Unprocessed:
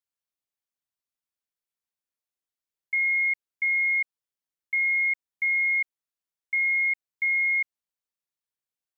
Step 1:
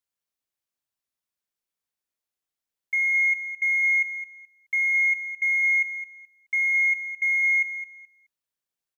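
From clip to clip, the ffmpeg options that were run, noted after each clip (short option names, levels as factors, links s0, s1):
-filter_complex "[0:a]asplit=2[s0][s1];[s1]asoftclip=type=tanh:threshold=0.0316,volume=0.282[s2];[s0][s2]amix=inputs=2:normalize=0,aecho=1:1:213|426|639:0.266|0.0559|0.0117"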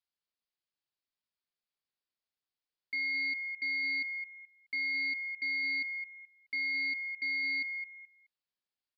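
-af "aemphasis=mode=production:type=50fm,aresample=11025,asoftclip=type=tanh:threshold=0.0501,aresample=44100,volume=0.531"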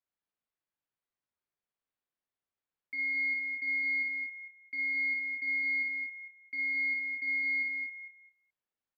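-filter_complex "[0:a]lowpass=2100,asplit=2[s0][s1];[s1]aecho=0:1:55.39|198.3|239.1:0.708|0.316|0.355[s2];[s0][s2]amix=inputs=2:normalize=0"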